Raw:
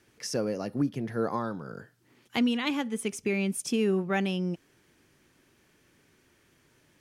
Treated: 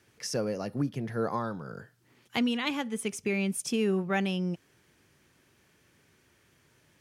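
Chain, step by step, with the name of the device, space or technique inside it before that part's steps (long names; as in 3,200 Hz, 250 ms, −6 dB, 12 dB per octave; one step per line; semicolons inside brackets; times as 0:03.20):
high-pass filter 65 Hz
low shelf boost with a cut just above (low-shelf EQ 84 Hz +6 dB; parametric band 290 Hz −4 dB 0.9 octaves)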